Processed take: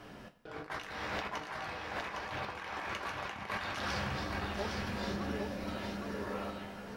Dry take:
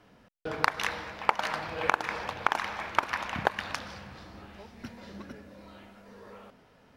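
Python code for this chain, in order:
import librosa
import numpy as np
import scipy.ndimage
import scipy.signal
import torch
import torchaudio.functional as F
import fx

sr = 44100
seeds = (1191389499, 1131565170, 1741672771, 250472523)

p1 = fx.over_compress(x, sr, threshold_db=-44.0, ratio=-1.0)
p2 = p1 + fx.echo_single(p1, sr, ms=809, db=-4.0, dry=0)
y = fx.rev_double_slope(p2, sr, seeds[0], early_s=0.2, late_s=1.5, knee_db=-18, drr_db=3.0)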